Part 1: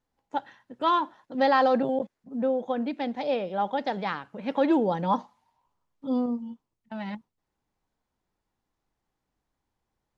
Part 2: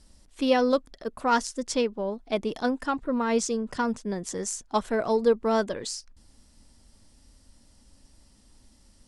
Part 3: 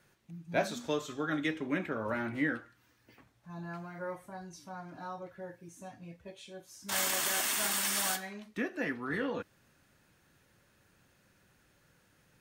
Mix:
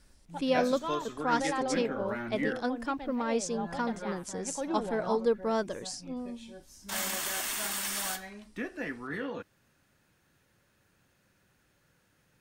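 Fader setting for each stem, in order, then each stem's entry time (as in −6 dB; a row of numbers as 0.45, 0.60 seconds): −12.0, −5.5, −2.0 decibels; 0.00, 0.00, 0.00 seconds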